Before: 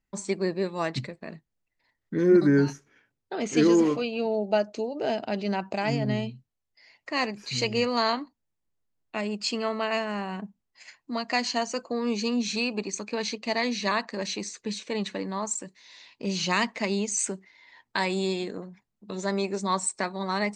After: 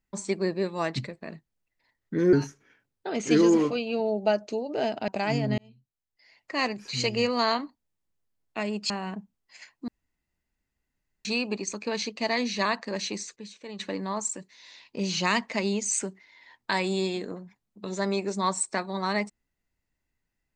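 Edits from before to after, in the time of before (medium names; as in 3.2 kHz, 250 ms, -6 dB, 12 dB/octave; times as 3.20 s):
2.33–2.59 s: delete
5.34–5.66 s: delete
6.16–7.15 s: fade in
9.48–10.16 s: delete
11.14–12.51 s: room tone
14.62–15.05 s: gain -10.5 dB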